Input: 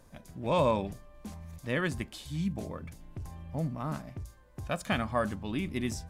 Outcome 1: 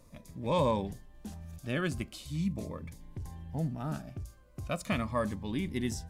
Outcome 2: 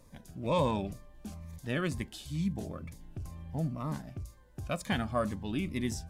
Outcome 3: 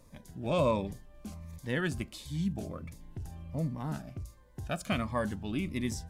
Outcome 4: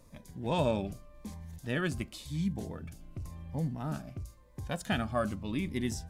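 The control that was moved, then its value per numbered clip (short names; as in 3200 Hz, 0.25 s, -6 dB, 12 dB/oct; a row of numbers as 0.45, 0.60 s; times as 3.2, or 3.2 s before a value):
cascading phaser, rate: 0.41, 2.1, 1.4, 0.92 Hz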